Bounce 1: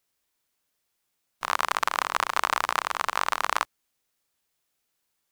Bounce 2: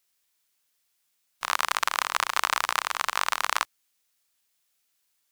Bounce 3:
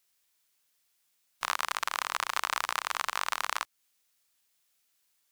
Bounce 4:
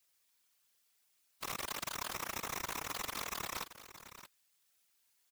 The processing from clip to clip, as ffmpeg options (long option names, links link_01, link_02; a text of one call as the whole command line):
ffmpeg -i in.wav -af "tiltshelf=frequency=1200:gain=-5.5,volume=-1dB" out.wav
ffmpeg -i in.wav -af "alimiter=limit=-8.5dB:level=0:latency=1:release=230" out.wav
ffmpeg -i in.wav -af "aeval=exprs='(mod(15.8*val(0)+1,2)-1)/15.8':channel_layout=same,aecho=1:1:625:0.224,afftfilt=real='hypot(re,im)*cos(2*PI*random(0))':imag='hypot(re,im)*sin(2*PI*random(1))':win_size=512:overlap=0.75,volume=4.5dB" out.wav